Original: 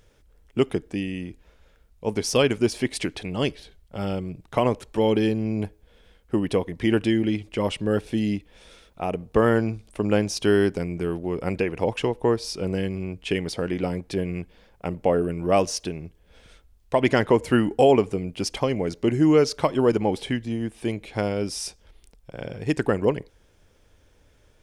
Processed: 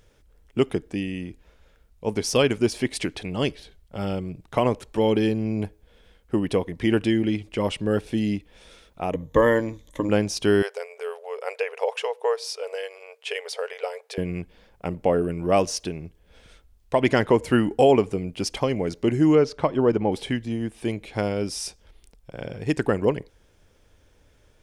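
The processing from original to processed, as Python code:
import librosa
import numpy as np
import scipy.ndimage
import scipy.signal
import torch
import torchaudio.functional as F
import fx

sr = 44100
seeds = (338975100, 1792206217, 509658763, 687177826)

y = fx.ripple_eq(x, sr, per_octave=1.1, db=14, at=(9.11, 10.09))
y = fx.brickwall_highpass(y, sr, low_hz=410.0, at=(10.62, 14.18))
y = fx.lowpass(y, sr, hz=1900.0, slope=6, at=(19.35, 20.12))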